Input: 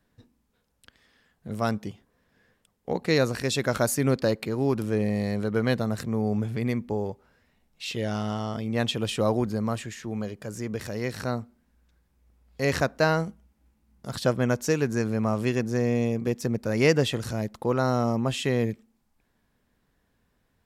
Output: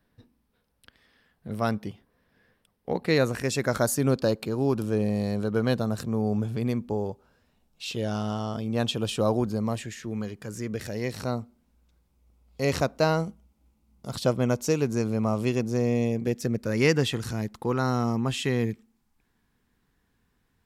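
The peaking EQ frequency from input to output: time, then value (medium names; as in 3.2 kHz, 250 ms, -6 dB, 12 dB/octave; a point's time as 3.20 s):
peaking EQ -10 dB 0.38 oct
3.00 s 7 kHz
4.02 s 2 kHz
9.49 s 2 kHz
10.34 s 530 Hz
11.21 s 1.7 kHz
15.86 s 1.7 kHz
16.93 s 590 Hz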